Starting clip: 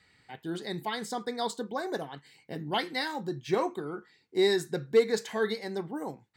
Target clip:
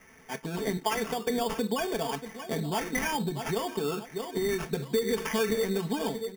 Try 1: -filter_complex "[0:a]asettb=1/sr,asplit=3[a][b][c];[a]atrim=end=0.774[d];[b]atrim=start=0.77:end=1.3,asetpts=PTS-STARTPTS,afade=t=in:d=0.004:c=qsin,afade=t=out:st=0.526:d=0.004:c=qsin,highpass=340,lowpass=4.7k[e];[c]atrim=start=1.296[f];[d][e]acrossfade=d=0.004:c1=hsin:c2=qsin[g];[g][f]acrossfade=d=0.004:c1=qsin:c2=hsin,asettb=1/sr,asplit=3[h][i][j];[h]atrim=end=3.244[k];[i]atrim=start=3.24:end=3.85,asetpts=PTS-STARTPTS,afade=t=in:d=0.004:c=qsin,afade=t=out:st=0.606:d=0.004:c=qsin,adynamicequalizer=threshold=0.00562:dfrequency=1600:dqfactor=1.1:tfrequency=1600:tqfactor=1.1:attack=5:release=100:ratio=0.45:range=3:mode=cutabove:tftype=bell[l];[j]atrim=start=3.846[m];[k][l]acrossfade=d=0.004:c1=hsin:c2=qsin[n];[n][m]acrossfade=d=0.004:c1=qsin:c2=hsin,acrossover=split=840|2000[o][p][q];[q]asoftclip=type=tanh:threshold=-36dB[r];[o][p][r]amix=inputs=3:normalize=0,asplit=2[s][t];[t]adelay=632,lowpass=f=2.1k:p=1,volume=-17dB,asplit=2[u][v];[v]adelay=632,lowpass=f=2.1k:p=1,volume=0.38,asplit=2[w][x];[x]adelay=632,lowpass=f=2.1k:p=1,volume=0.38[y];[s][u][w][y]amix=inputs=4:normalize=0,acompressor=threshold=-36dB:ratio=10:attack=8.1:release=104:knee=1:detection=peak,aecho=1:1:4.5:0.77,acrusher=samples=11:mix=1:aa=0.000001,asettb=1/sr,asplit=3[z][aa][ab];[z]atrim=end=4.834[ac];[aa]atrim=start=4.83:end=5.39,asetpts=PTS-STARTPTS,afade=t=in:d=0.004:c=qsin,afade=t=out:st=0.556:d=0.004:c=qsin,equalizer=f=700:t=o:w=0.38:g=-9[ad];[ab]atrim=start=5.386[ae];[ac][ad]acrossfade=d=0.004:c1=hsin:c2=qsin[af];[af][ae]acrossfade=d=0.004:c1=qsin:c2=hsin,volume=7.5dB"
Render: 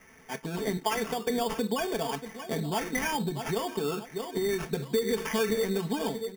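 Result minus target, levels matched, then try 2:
soft clip: distortion +13 dB
-filter_complex "[0:a]asettb=1/sr,asplit=3[a][b][c];[a]atrim=end=0.774[d];[b]atrim=start=0.77:end=1.3,asetpts=PTS-STARTPTS,afade=t=in:d=0.004:c=qsin,afade=t=out:st=0.526:d=0.004:c=qsin,highpass=340,lowpass=4.7k[e];[c]atrim=start=1.296[f];[d][e]acrossfade=d=0.004:c1=hsin:c2=qsin[g];[g][f]acrossfade=d=0.004:c1=qsin:c2=hsin,asettb=1/sr,asplit=3[h][i][j];[h]atrim=end=3.244[k];[i]atrim=start=3.24:end=3.85,asetpts=PTS-STARTPTS,afade=t=in:d=0.004:c=qsin,afade=t=out:st=0.606:d=0.004:c=qsin,adynamicequalizer=threshold=0.00562:dfrequency=1600:dqfactor=1.1:tfrequency=1600:tqfactor=1.1:attack=5:release=100:ratio=0.45:range=3:mode=cutabove:tftype=bell[l];[j]atrim=start=3.846[m];[k][l]acrossfade=d=0.004:c1=hsin:c2=qsin[n];[n][m]acrossfade=d=0.004:c1=qsin:c2=hsin,acrossover=split=840|2000[o][p][q];[q]asoftclip=type=tanh:threshold=-25dB[r];[o][p][r]amix=inputs=3:normalize=0,asplit=2[s][t];[t]adelay=632,lowpass=f=2.1k:p=1,volume=-17dB,asplit=2[u][v];[v]adelay=632,lowpass=f=2.1k:p=1,volume=0.38,asplit=2[w][x];[x]adelay=632,lowpass=f=2.1k:p=1,volume=0.38[y];[s][u][w][y]amix=inputs=4:normalize=0,acompressor=threshold=-36dB:ratio=10:attack=8.1:release=104:knee=1:detection=peak,aecho=1:1:4.5:0.77,acrusher=samples=11:mix=1:aa=0.000001,asettb=1/sr,asplit=3[z][aa][ab];[z]atrim=end=4.834[ac];[aa]atrim=start=4.83:end=5.39,asetpts=PTS-STARTPTS,afade=t=in:d=0.004:c=qsin,afade=t=out:st=0.556:d=0.004:c=qsin,equalizer=f=700:t=o:w=0.38:g=-9[ad];[ab]atrim=start=5.386[ae];[ac][ad]acrossfade=d=0.004:c1=hsin:c2=qsin[af];[af][ae]acrossfade=d=0.004:c1=qsin:c2=hsin,volume=7.5dB"

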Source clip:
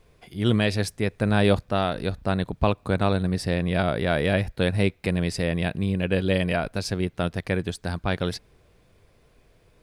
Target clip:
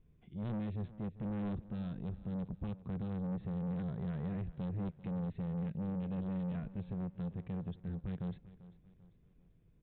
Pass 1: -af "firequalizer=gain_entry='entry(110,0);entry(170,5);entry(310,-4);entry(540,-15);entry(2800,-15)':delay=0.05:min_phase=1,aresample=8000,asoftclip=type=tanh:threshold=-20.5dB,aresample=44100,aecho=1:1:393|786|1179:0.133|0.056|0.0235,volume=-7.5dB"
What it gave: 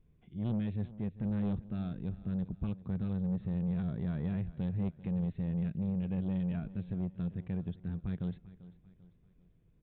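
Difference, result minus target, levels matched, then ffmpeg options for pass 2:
soft clip: distortion -6 dB
-af "firequalizer=gain_entry='entry(110,0);entry(170,5);entry(310,-4);entry(540,-15);entry(2800,-15)':delay=0.05:min_phase=1,aresample=8000,asoftclip=type=tanh:threshold=-27.5dB,aresample=44100,aecho=1:1:393|786|1179:0.133|0.056|0.0235,volume=-7.5dB"

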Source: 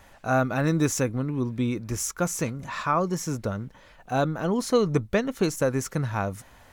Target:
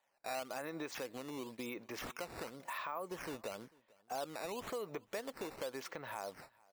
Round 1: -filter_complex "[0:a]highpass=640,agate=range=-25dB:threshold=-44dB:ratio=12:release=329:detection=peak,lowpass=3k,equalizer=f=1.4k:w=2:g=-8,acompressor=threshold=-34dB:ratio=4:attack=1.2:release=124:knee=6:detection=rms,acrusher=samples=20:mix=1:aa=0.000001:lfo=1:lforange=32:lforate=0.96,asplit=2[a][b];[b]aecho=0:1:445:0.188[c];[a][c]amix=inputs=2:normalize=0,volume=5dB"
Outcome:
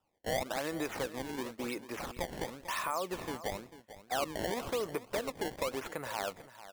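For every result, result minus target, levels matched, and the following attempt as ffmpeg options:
echo-to-direct +11 dB; compressor: peak gain reduction -7 dB; decimation with a swept rate: distortion +8 dB
-filter_complex "[0:a]highpass=640,agate=range=-25dB:threshold=-44dB:ratio=12:release=329:detection=peak,lowpass=3k,equalizer=f=1.4k:w=2:g=-8,acompressor=threshold=-34dB:ratio=4:attack=1.2:release=124:knee=6:detection=rms,acrusher=samples=20:mix=1:aa=0.000001:lfo=1:lforange=32:lforate=0.96,asplit=2[a][b];[b]aecho=0:1:445:0.0531[c];[a][c]amix=inputs=2:normalize=0,volume=5dB"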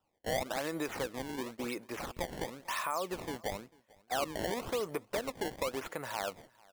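compressor: peak gain reduction -7 dB; decimation with a swept rate: distortion +8 dB
-filter_complex "[0:a]highpass=640,agate=range=-25dB:threshold=-44dB:ratio=12:release=329:detection=peak,lowpass=3k,equalizer=f=1.4k:w=2:g=-8,acompressor=threshold=-43.5dB:ratio=4:attack=1.2:release=124:knee=6:detection=rms,acrusher=samples=20:mix=1:aa=0.000001:lfo=1:lforange=32:lforate=0.96,asplit=2[a][b];[b]aecho=0:1:445:0.0531[c];[a][c]amix=inputs=2:normalize=0,volume=5dB"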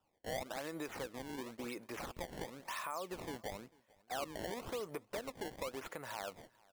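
decimation with a swept rate: distortion +8 dB
-filter_complex "[0:a]highpass=640,agate=range=-25dB:threshold=-44dB:ratio=12:release=329:detection=peak,lowpass=3k,equalizer=f=1.4k:w=2:g=-8,acompressor=threshold=-43.5dB:ratio=4:attack=1.2:release=124:knee=6:detection=rms,acrusher=samples=8:mix=1:aa=0.000001:lfo=1:lforange=12.8:lforate=0.96,asplit=2[a][b];[b]aecho=0:1:445:0.0531[c];[a][c]amix=inputs=2:normalize=0,volume=5dB"

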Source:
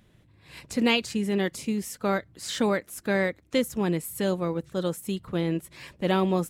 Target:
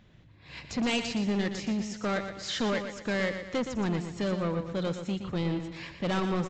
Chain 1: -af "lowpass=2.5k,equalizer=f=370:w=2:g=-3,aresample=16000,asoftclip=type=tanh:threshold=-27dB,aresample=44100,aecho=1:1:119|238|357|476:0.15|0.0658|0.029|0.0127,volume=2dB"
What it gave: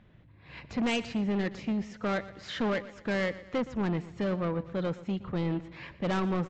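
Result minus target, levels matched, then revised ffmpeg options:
8000 Hz band -8.0 dB; echo-to-direct -8 dB
-af "lowpass=5.9k,equalizer=f=370:w=2:g=-3,aresample=16000,asoftclip=type=tanh:threshold=-27dB,aresample=44100,aecho=1:1:119|238|357|476|595:0.376|0.165|0.0728|0.032|0.0141,volume=2dB"

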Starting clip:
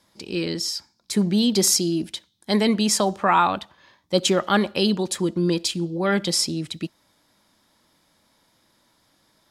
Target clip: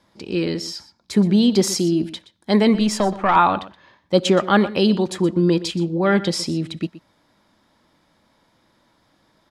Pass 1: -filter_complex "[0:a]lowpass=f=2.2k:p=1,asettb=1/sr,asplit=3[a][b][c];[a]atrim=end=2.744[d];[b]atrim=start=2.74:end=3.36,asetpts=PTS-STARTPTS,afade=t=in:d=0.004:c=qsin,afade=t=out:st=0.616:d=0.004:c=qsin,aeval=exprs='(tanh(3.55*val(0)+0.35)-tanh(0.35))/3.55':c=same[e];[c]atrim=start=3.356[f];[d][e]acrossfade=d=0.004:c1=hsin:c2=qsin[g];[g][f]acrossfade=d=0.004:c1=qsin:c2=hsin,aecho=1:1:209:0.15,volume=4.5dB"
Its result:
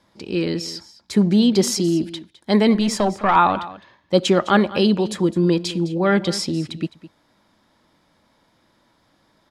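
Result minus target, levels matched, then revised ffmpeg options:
echo 87 ms late
-filter_complex "[0:a]lowpass=f=2.2k:p=1,asettb=1/sr,asplit=3[a][b][c];[a]atrim=end=2.744[d];[b]atrim=start=2.74:end=3.36,asetpts=PTS-STARTPTS,afade=t=in:d=0.004:c=qsin,afade=t=out:st=0.616:d=0.004:c=qsin,aeval=exprs='(tanh(3.55*val(0)+0.35)-tanh(0.35))/3.55':c=same[e];[c]atrim=start=3.356[f];[d][e]acrossfade=d=0.004:c1=hsin:c2=qsin[g];[g][f]acrossfade=d=0.004:c1=qsin:c2=hsin,aecho=1:1:122:0.15,volume=4.5dB"

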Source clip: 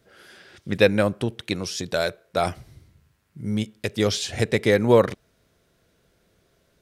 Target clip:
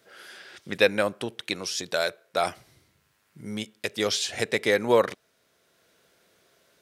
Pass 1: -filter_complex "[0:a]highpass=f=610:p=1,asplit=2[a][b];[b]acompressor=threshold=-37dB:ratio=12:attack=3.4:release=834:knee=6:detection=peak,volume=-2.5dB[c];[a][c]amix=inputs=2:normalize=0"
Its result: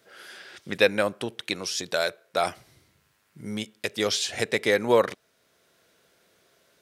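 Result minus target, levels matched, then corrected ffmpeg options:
compressor: peak gain reduction -7 dB
-filter_complex "[0:a]highpass=f=610:p=1,asplit=2[a][b];[b]acompressor=threshold=-44.5dB:ratio=12:attack=3.4:release=834:knee=6:detection=peak,volume=-2.5dB[c];[a][c]amix=inputs=2:normalize=0"

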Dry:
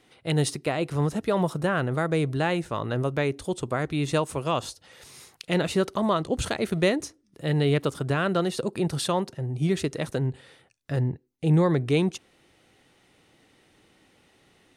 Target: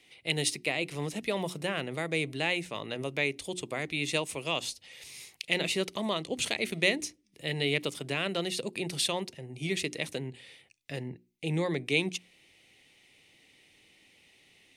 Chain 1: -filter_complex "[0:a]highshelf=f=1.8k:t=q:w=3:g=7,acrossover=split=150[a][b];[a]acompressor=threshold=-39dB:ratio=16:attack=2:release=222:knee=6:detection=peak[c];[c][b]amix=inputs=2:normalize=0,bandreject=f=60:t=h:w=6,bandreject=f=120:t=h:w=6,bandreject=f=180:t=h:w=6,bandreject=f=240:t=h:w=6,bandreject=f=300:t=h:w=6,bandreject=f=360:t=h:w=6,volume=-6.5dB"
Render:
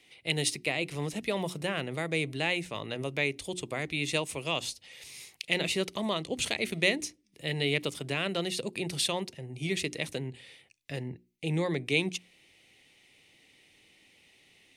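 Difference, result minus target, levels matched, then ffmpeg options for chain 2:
compressor: peak gain reduction -8.5 dB
-filter_complex "[0:a]highshelf=f=1.8k:t=q:w=3:g=7,acrossover=split=150[a][b];[a]acompressor=threshold=-48dB:ratio=16:attack=2:release=222:knee=6:detection=peak[c];[c][b]amix=inputs=2:normalize=0,bandreject=f=60:t=h:w=6,bandreject=f=120:t=h:w=6,bandreject=f=180:t=h:w=6,bandreject=f=240:t=h:w=6,bandreject=f=300:t=h:w=6,bandreject=f=360:t=h:w=6,volume=-6.5dB"

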